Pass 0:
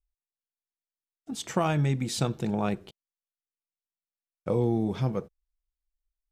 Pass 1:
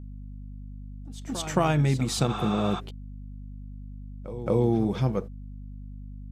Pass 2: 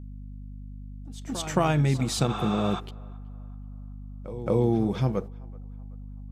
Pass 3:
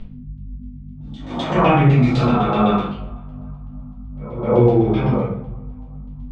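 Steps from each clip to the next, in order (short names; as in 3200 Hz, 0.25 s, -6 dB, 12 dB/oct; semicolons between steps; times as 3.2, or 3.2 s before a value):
spectral repair 2.32–2.77, 680–9000 Hz before; pre-echo 0.221 s -14 dB; hum 50 Hz, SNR 11 dB; gain +2.5 dB
narrowing echo 0.379 s, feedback 49%, band-pass 960 Hz, level -23 dB
phase scrambler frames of 0.2 s; LFO low-pass saw down 7.9 Hz 780–3300 Hz; reverb RT60 0.55 s, pre-delay 4 ms, DRR -6.5 dB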